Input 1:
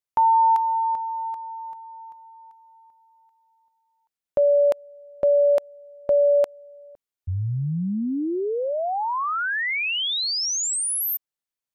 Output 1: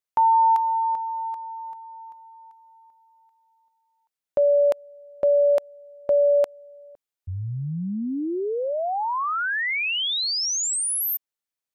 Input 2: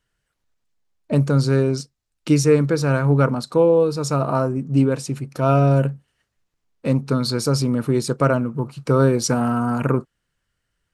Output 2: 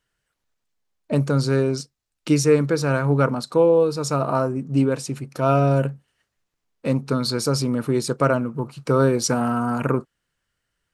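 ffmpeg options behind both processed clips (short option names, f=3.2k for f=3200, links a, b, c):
-af "lowshelf=f=190:g=-5.5"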